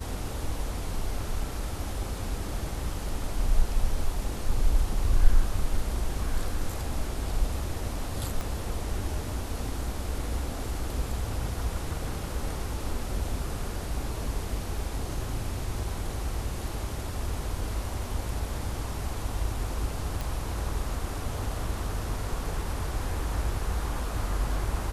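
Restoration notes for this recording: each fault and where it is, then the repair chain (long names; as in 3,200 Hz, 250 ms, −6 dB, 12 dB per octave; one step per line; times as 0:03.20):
0:08.41: click
0:20.21: click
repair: click removal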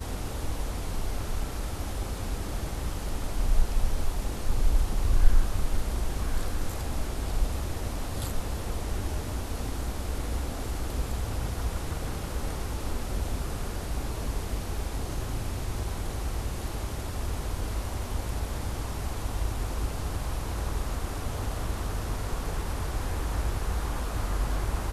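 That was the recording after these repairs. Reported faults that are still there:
0:08.41: click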